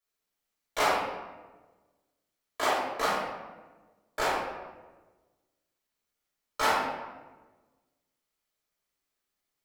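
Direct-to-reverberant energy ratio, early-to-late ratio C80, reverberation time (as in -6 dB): -8.5 dB, 3.0 dB, 1.3 s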